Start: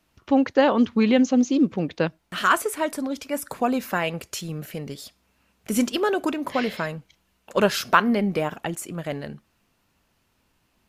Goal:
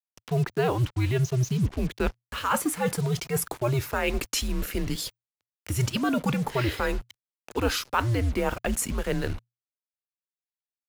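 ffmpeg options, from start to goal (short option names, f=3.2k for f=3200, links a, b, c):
-af "areverse,acompressor=threshold=-31dB:ratio=5,areverse,acrusher=bits=7:mix=0:aa=0.5,afreqshift=-120,acompressor=mode=upward:threshold=-48dB:ratio=2.5,volume=7.5dB"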